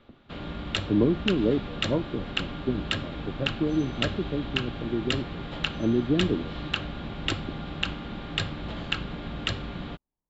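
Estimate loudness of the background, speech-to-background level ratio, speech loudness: -32.5 LUFS, 3.5 dB, -29.0 LUFS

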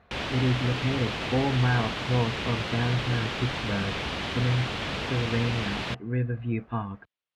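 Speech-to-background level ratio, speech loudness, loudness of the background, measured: 1.5 dB, -29.5 LUFS, -31.0 LUFS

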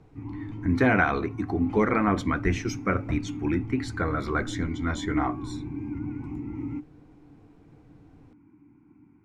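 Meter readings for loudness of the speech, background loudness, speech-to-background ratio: -27.0 LUFS, -36.0 LUFS, 9.0 dB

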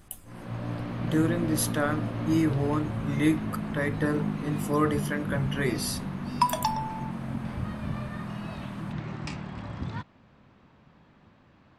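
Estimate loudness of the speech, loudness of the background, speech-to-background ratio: -29.0 LUFS, -34.0 LUFS, 5.0 dB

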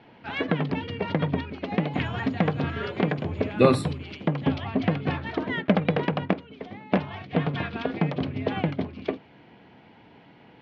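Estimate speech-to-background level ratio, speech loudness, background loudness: 1.0 dB, -27.0 LUFS, -28.0 LUFS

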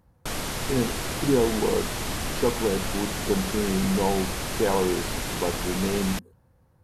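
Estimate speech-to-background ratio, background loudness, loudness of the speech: 2.5 dB, -30.0 LUFS, -27.5 LUFS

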